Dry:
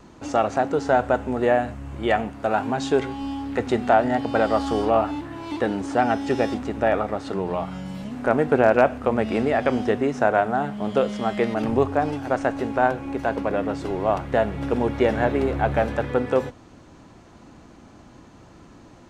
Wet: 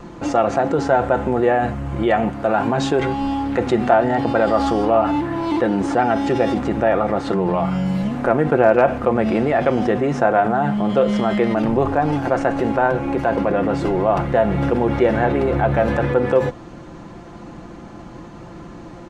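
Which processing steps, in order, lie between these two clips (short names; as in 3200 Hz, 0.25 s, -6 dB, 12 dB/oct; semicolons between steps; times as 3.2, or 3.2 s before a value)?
high shelf 3100 Hz -9 dB; comb 5.8 ms, depth 45%; in parallel at -1 dB: negative-ratio compressor -29 dBFS, ratio -1; on the sum: gain +2 dB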